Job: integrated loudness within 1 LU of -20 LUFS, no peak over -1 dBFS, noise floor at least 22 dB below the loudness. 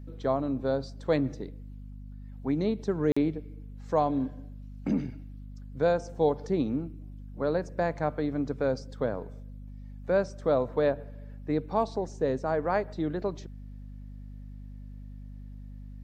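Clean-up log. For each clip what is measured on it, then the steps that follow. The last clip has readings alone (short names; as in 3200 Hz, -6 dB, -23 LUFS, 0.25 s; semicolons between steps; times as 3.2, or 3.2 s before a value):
dropouts 1; longest dropout 45 ms; hum 50 Hz; harmonics up to 250 Hz; hum level -40 dBFS; loudness -29.5 LUFS; peak -13.0 dBFS; loudness target -20.0 LUFS
-> interpolate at 3.12, 45 ms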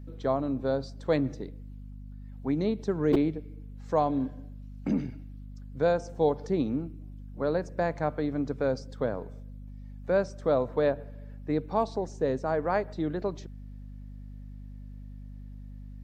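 dropouts 0; hum 50 Hz; harmonics up to 250 Hz; hum level -40 dBFS
-> de-hum 50 Hz, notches 5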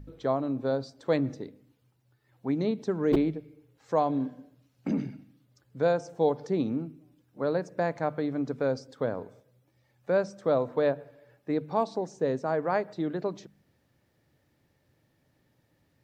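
hum none; loudness -30.0 LUFS; peak -11.5 dBFS; loudness target -20.0 LUFS
-> gain +10 dB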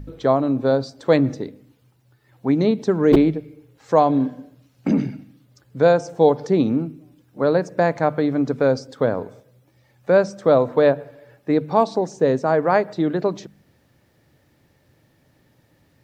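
loudness -20.0 LUFS; peak -1.5 dBFS; noise floor -61 dBFS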